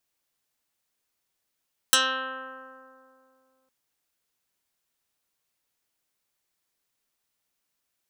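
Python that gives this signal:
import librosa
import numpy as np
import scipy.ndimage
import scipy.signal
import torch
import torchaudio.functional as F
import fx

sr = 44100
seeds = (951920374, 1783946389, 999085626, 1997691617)

y = fx.pluck(sr, length_s=1.76, note=60, decay_s=2.72, pick=0.11, brightness='dark')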